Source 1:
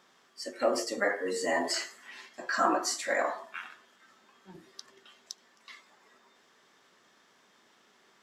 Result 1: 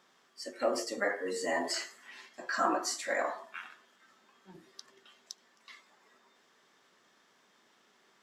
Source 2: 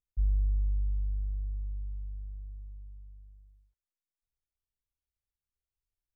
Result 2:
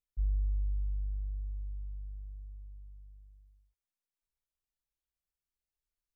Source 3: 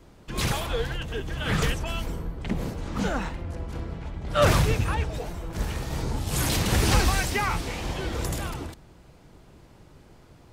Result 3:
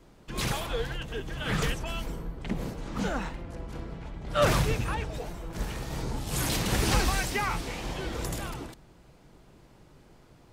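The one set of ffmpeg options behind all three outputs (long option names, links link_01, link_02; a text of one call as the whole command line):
ffmpeg -i in.wav -af "equalizer=frequency=82:width_type=o:width=0.31:gain=-12,volume=-3dB" out.wav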